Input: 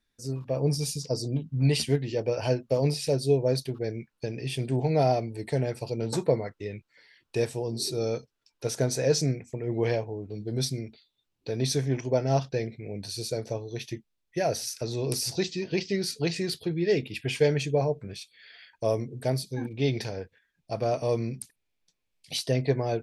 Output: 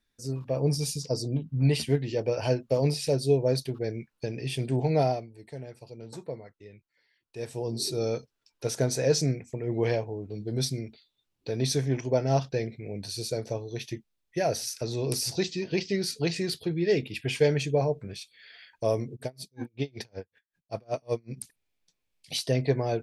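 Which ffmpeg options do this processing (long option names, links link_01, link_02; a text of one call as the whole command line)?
ffmpeg -i in.wav -filter_complex "[0:a]asettb=1/sr,asplit=3[link_01][link_02][link_03];[link_01]atrim=end=1.234[link_04];[link_02]atrim=start=1.23:end=1.97,asetpts=PTS-STARTPTS,afade=type=in:duration=0.004:curve=qsin,afade=type=out:start_time=0.736:duration=0.004:curve=qsin,equalizer=frequency=6400:width=0.64:gain=-5[link_05];[link_03]atrim=start=1.966[link_06];[link_04][link_05]acrossfade=duration=0.004:curve1=hsin:curve2=qsin[link_07];[link_07][link_06]acrossfade=duration=0.004:curve1=qsin:curve2=hsin,asplit=3[link_08][link_09][link_10];[link_08]afade=type=out:start_time=19.15:duration=0.02[link_11];[link_09]aeval=exprs='val(0)*pow(10,-35*(0.5-0.5*cos(2*PI*5.3*n/s))/20)':channel_layout=same,afade=type=in:start_time=19.15:duration=0.02,afade=type=out:start_time=21.36:duration=0.02[link_12];[link_10]afade=type=in:start_time=21.36:duration=0.02[link_13];[link_11][link_12][link_13]amix=inputs=3:normalize=0,asplit=3[link_14][link_15][link_16];[link_14]atrim=end=5.27,asetpts=PTS-STARTPTS,afade=type=out:start_time=4.98:duration=0.29:silence=0.223872[link_17];[link_15]atrim=start=5.27:end=7.37,asetpts=PTS-STARTPTS,volume=-13dB[link_18];[link_16]atrim=start=7.37,asetpts=PTS-STARTPTS,afade=type=in:duration=0.29:silence=0.223872[link_19];[link_17][link_18][link_19]concat=n=3:v=0:a=1" out.wav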